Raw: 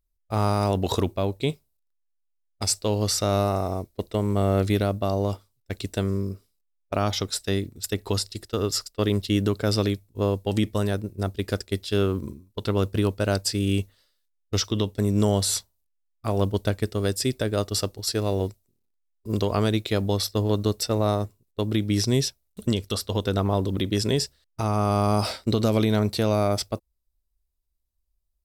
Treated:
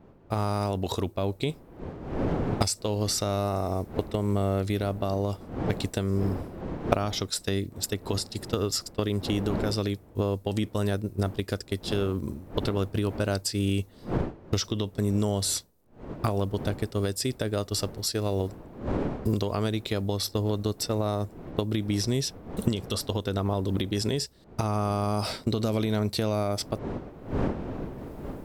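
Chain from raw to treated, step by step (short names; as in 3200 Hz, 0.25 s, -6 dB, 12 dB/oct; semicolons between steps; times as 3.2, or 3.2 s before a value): wind noise 380 Hz -40 dBFS; recorder AGC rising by 31 dB/s; gain -6 dB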